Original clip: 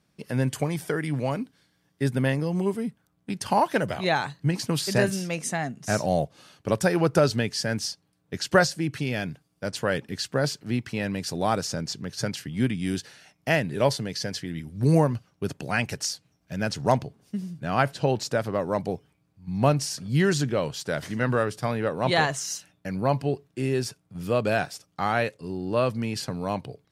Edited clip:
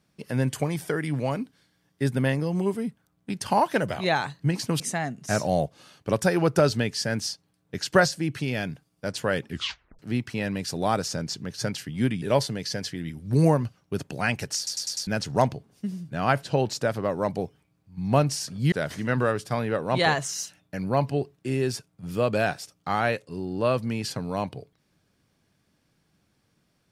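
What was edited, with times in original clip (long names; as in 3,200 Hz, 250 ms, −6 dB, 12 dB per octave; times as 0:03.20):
0:04.80–0:05.39: remove
0:10.08: tape stop 0.50 s
0:12.81–0:13.72: remove
0:16.07: stutter in place 0.10 s, 5 plays
0:20.22–0:20.84: remove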